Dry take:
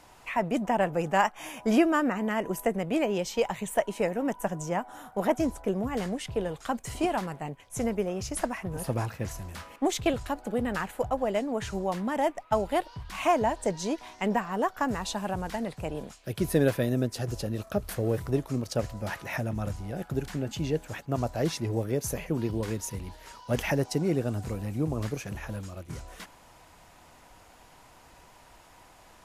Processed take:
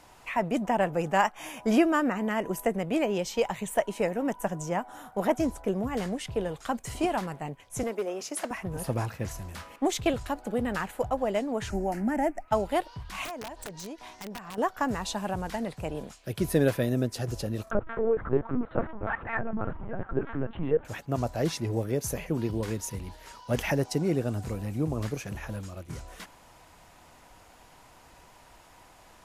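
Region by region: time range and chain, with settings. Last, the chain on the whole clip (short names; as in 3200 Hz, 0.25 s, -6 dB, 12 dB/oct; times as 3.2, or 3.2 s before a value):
7.83–8.51 HPF 270 Hz 24 dB/oct + hard clip -24.5 dBFS
11.7–12.48 low shelf 240 Hz +10 dB + fixed phaser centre 720 Hz, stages 8 + three-band squash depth 40%
13.25–14.58 compressor 5:1, threshold -37 dBFS + wrapped overs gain 31.5 dB
17.71–20.85 synth low-pass 1400 Hz, resonance Q 2.3 + comb 4.4 ms, depth 68% + LPC vocoder at 8 kHz pitch kept
whole clip: dry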